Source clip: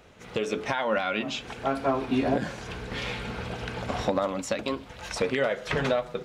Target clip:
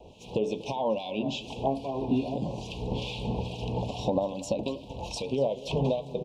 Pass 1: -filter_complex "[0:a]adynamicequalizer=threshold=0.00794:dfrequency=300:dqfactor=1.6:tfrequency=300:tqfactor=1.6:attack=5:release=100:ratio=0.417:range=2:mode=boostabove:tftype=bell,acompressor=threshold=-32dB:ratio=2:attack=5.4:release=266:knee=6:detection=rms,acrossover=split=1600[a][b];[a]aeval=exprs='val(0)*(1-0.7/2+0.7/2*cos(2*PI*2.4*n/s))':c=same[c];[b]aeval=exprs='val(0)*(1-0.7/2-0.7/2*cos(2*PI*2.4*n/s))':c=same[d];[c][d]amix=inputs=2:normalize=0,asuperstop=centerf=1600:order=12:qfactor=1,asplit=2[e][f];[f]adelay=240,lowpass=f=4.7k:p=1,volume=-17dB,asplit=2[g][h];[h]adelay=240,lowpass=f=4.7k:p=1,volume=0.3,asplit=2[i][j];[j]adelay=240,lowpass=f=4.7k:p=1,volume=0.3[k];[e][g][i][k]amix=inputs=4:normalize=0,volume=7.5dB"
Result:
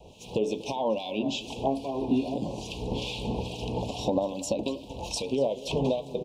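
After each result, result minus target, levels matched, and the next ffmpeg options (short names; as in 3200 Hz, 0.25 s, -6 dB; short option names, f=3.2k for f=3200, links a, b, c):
8000 Hz band +5.0 dB; 125 Hz band -3.5 dB
-filter_complex "[0:a]adynamicequalizer=threshold=0.00794:dfrequency=300:dqfactor=1.6:tfrequency=300:tqfactor=1.6:attack=5:release=100:ratio=0.417:range=2:mode=boostabove:tftype=bell,acompressor=threshold=-32dB:ratio=2:attack=5.4:release=266:knee=6:detection=rms,highshelf=f=5.8k:g=-10.5,acrossover=split=1600[a][b];[a]aeval=exprs='val(0)*(1-0.7/2+0.7/2*cos(2*PI*2.4*n/s))':c=same[c];[b]aeval=exprs='val(0)*(1-0.7/2-0.7/2*cos(2*PI*2.4*n/s))':c=same[d];[c][d]amix=inputs=2:normalize=0,asuperstop=centerf=1600:order=12:qfactor=1,asplit=2[e][f];[f]adelay=240,lowpass=f=4.7k:p=1,volume=-17dB,asplit=2[g][h];[h]adelay=240,lowpass=f=4.7k:p=1,volume=0.3,asplit=2[i][j];[j]adelay=240,lowpass=f=4.7k:p=1,volume=0.3[k];[e][g][i][k]amix=inputs=4:normalize=0,volume=7.5dB"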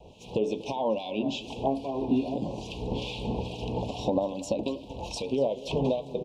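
125 Hz band -3.0 dB
-filter_complex "[0:a]adynamicequalizer=threshold=0.00794:dfrequency=140:dqfactor=1.6:tfrequency=140:tqfactor=1.6:attack=5:release=100:ratio=0.417:range=2:mode=boostabove:tftype=bell,acompressor=threshold=-32dB:ratio=2:attack=5.4:release=266:knee=6:detection=rms,highshelf=f=5.8k:g=-10.5,acrossover=split=1600[a][b];[a]aeval=exprs='val(0)*(1-0.7/2+0.7/2*cos(2*PI*2.4*n/s))':c=same[c];[b]aeval=exprs='val(0)*(1-0.7/2-0.7/2*cos(2*PI*2.4*n/s))':c=same[d];[c][d]amix=inputs=2:normalize=0,asuperstop=centerf=1600:order=12:qfactor=1,asplit=2[e][f];[f]adelay=240,lowpass=f=4.7k:p=1,volume=-17dB,asplit=2[g][h];[h]adelay=240,lowpass=f=4.7k:p=1,volume=0.3,asplit=2[i][j];[j]adelay=240,lowpass=f=4.7k:p=1,volume=0.3[k];[e][g][i][k]amix=inputs=4:normalize=0,volume=7.5dB"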